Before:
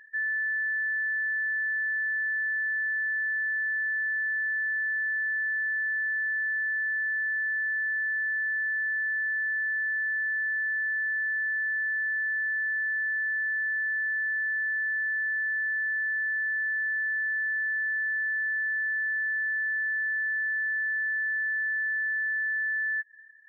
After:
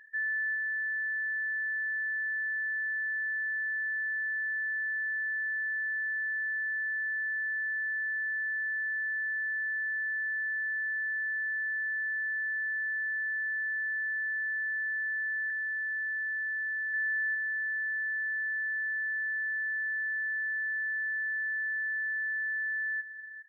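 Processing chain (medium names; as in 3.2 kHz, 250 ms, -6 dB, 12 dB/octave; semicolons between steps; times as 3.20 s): 15.50–16.94 s: Chebyshev high-pass 1.7 kHz, order 2; echo from a far wall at 70 m, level -12 dB; trim -2.5 dB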